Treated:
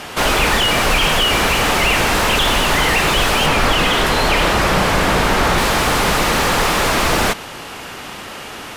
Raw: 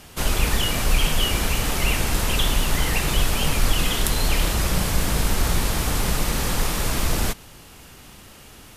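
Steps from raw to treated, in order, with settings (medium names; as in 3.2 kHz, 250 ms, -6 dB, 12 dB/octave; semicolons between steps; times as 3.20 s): 3.46–5.58 s: treble shelf 3.9 kHz -6.5 dB; overdrive pedal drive 24 dB, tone 1.8 kHz, clips at -6.5 dBFS; trim +3.5 dB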